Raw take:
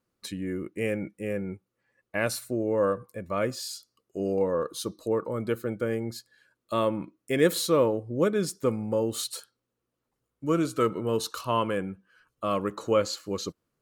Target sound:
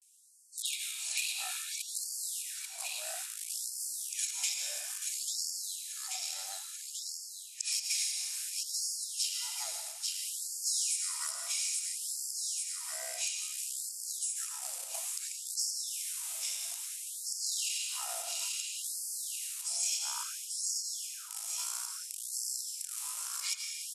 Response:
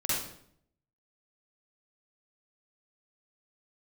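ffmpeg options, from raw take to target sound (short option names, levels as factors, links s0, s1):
-filter_complex "[0:a]areverse,asplit=2[s0][s1];[s1]aeval=exprs='val(0)*gte(abs(val(0)),0.0282)':c=same,volume=0.376[s2];[s0][s2]amix=inputs=2:normalize=0,highshelf=f=12000:g=10.5,aecho=1:1:482|964|1446|1928:0.316|0.123|0.0481|0.0188,asplit=2[s3][s4];[1:a]atrim=start_sample=2205[s5];[s4][s5]afir=irnorm=-1:irlink=0,volume=0.316[s6];[s3][s6]amix=inputs=2:normalize=0,aexciter=amount=3.7:drive=3.7:freq=4100,asetrate=25442,aresample=44100,equalizer=f=250:t=o:w=1:g=-11,equalizer=f=500:t=o:w=1:g=-11,equalizer=f=8000:t=o:w=1:g=9,acompressor=threshold=0.0282:ratio=5,afftfilt=real='re*gte(b*sr/1024,470*pow(4400/470,0.5+0.5*sin(2*PI*0.59*pts/sr)))':imag='im*gte(b*sr/1024,470*pow(4400/470,0.5+0.5*sin(2*PI*0.59*pts/sr)))':win_size=1024:overlap=0.75,volume=0.75"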